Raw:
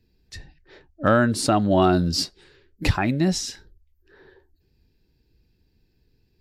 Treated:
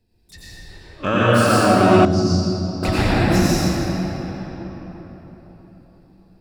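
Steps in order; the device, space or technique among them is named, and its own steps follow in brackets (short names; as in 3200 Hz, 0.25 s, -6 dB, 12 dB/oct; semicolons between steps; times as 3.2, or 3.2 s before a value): shimmer-style reverb (harmoniser +12 st -8 dB; reverb RT60 4.5 s, pre-delay 82 ms, DRR -9.5 dB); 2.05–2.83 EQ curve 120 Hz 0 dB, 2500 Hz -18 dB, 6300 Hz -2 dB, 11000 Hz -28 dB; gain -4 dB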